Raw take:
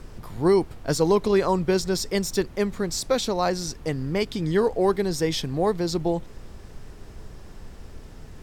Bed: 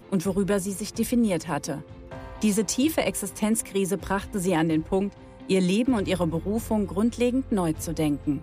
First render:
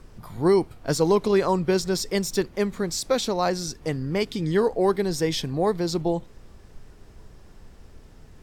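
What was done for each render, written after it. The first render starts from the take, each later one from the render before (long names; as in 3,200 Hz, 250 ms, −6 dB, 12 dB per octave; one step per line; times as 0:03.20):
noise reduction from a noise print 6 dB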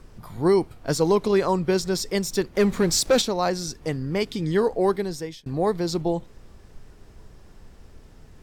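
0:02.55–0:03.22: leveller curve on the samples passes 2
0:04.88–0:05.46: fade out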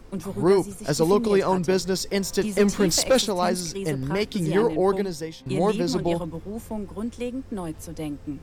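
mix in bed −7 dB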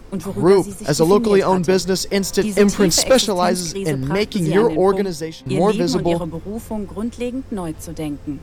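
level +6 dB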